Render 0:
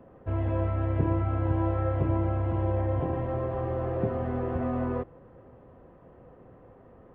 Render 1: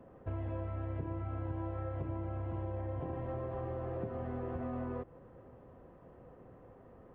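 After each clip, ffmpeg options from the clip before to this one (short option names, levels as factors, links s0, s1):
-af "acompressor=threshold=0.0251:ratio=6,volume=0.668"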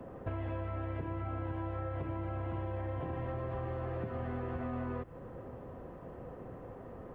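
-filter_complex "[0:a]acrossover=split=220|1200[s0][s1][s2];[s0]acompressor=threshold=0.00398:ratio=4[s3];[s1]acompressor=threshold=0.00282:ratio=4[s4];[s2]acompressor=threshold=0.00141:ratio=4[s5];[s3][s4][s5]amix=inputs=3:normalize=0,volume=2.82"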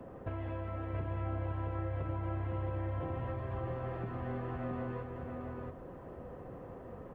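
-af "aecho=1:1:674:0.596,volume=0.841"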